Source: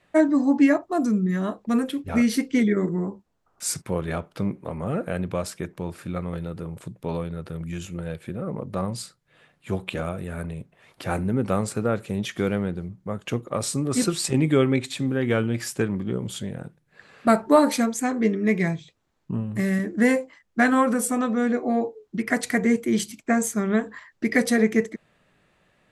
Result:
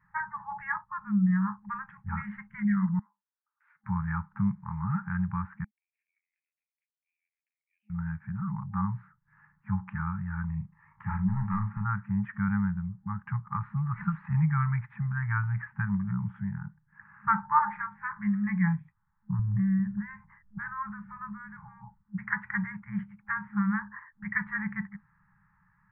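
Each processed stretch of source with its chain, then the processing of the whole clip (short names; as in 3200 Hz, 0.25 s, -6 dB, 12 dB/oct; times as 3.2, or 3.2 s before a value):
2.99–3.84 median filter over 3 samples + HPF 1300 Hz 6 dB/oct + differentiator
5.64–7.9 steep high-pass 2400 Hz 72 dB/oct + tape spacing loss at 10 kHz 44 dB
10.45–11.85 overloaded stage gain 21 dB + notch 1500 Hz, Q 5.6 + doubler 38 ms -6.5 dB
19.39–22.03 tone controls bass +14 dB, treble +3 dB + compressor 4:1, threshold -25 dBFS
whole clip: steep low-pass 1800 Hz 48 dB/oct; FFT band-reject 210–810 Hz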